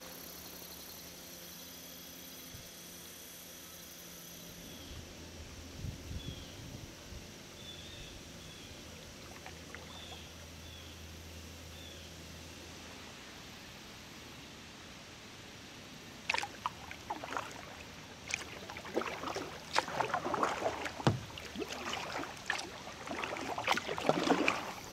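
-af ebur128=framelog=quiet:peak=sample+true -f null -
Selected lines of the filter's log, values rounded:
Integrated loudness:
  I:         -41.0 LUFS
  Threshold: -50.9 LUFS
Loudness range:
  LRA:        11.9 LU
  Threshold: -61.9 LUFS
  LRA low:   -48.6 LUFS
  LRA high:  -36.6 LUFS
Sample peak:
  Peak:      -11.1 dBFS
True peak:
  Peak:      -10.9 dBFS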